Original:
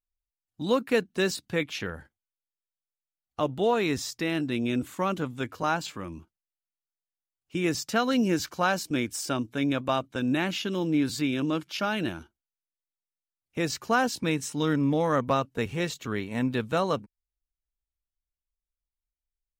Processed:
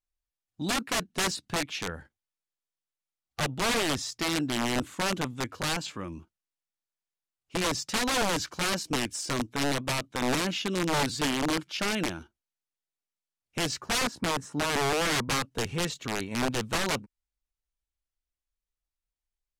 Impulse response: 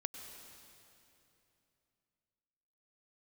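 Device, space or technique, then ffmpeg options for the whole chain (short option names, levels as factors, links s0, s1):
overflowing digital effects unit: -filter_complex "[0:a]asettb=1/sr,asplit=3[s0][s1][s2];[s0]atrim=end=13.814[s3];[s1]atrim=start=13.81:end=15.42,asetpts=PTS-STARTPTS,afade=t=in:d=0.004:c=qsin,afade=t=out:st=1.606:d=0.004:c=qsin,highshelf=f=2000:t=q:w=1.5:g=-9.5[s4];[s2]atrim=start=15.416[s5];[s3][s4]acrossfade=d=0.004:c1=hsin:c2=qsin[s6];[s6][s5]acrossfade=d=0.004:c1=qsin:c2=hsin,aeval=exprs='(mod(11.9*val(0)+1,2)-1)/11.9':c=same,lowpass=10000"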